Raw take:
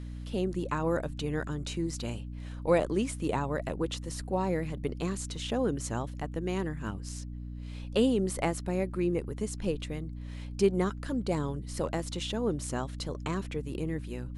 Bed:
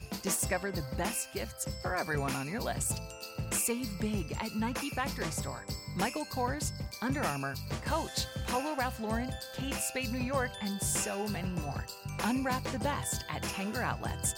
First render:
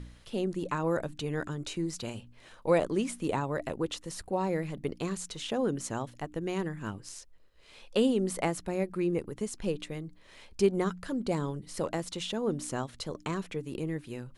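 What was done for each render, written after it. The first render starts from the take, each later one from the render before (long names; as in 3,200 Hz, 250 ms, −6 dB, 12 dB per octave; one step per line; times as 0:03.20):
hum removal 60 Hz, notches 5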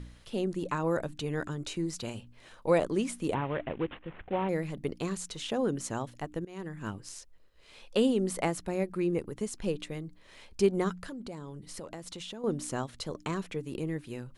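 0:03.34–0:04.49: variable-slope delta modulation 16 kbit/s
0:06.45–0:06.87: fade in, from −22.5 dB
0:11.06–0:12.44: downward compressor 4 to 1, threshold −39 dBFS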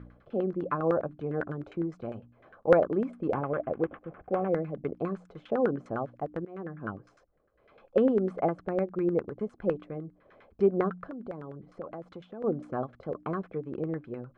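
notch comb filter 930 Hz
auto-filter low-pass saw down 9.9 Hz 500–1,600 Hz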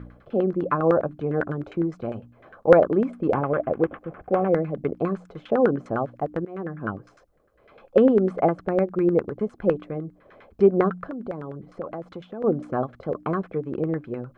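level +7 dB
brickwall limiter −3 dBFS, peak gain reduction 1 dB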